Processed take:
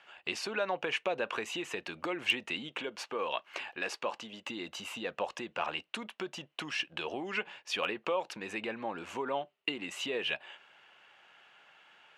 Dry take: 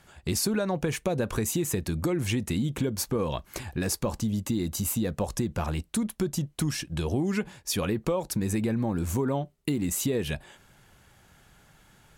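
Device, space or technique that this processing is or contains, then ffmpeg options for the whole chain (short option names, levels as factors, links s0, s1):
megaphone: -filter_complex "[0:a]highpass=650,lowpass=2900,equalizer=f=2800:t=o:w=0.4:g=10.5,asoftclip=type=hard:threshold=0.112,asettb=1/sr,asplit=3[s0][s1][s2];[s0]atrim=end=2.694[s3];[s1]atrim=start=2.69:end=4.47,asetpts=PTS-STARTPTS,afade=t=in:d=0.004:c=qsin,afade=t=out:st=1.776:d=0.004:c=qsin,highpass=f=230:p=1[s4];[s2]atrim=start=4.466[s5];[s3][s4]acrossfade=d=0.004:c1=hsin:c2=qsin[s6];[s6][s5]acrossfade=d=0.004:c1=qsin:c2=hsin,volume=1.12"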